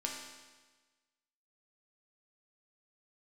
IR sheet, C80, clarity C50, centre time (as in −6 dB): 4.5 dB, 2.5 dB, 58 ms